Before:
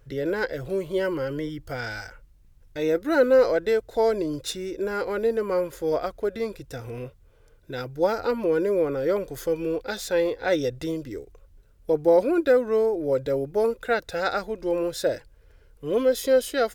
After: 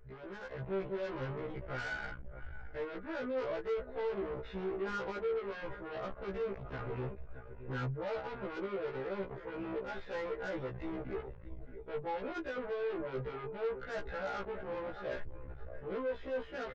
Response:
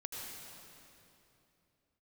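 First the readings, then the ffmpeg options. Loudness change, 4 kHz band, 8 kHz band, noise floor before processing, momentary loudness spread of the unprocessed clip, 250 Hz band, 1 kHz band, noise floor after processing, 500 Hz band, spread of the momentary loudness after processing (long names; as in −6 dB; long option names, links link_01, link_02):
−15.0 dB, −15.5 dB, below −25 dB, −56 dBFS, 15 LU, −14.5 dB, −11.0 dB, −49 dBFS, −15.5 dB, 9 LU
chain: -filter_complex "[0:a]lowshelf=frequency=120:gain=11.5,flanger=delay=4.5:depth=2.9:regen=43:speed=0.45:shape=triangular,equalizer=frequency=200:width=0.87:gain=-7.5,areverse,acompressor=threshold=-37dB:ratio=8,areverse,aecho=1:1:4.9:0.49,asplit=2[link_01][link_02];[link_02]aecho=0:1:622|1244:0.133|0.032[link_03];[link_01][link_03]amix=inputs=2:normalize=0,alimiter=level_in=9.5dB:limit=-24dB:level=0:latency=1:release=21,volume=-9.5dB,asoftclip=type=tanh:threshold=-37.5dB,lowpass=frequency=2100:width=0.5412,lowpass=frequency=2100:width=1.3066,aeval=exprs='0.0141*(cos(1*acos(clip(val(0)/0.0141,-1,1)))-cos(1*PI/2))+0.002*(cos(5*acos(clip(val(0)/0.0141,-1,1)))-cos(5*PI/2))':channel_layout=same,dynaudnorm=framelen=410:gausssize=3:maxgain=8dB,afftfilt=real='re*1.73*eq(mod(b,3),0)':imag='im*1.73*eq(mod(b,3),0)':win_size=2048:overlap=0.75"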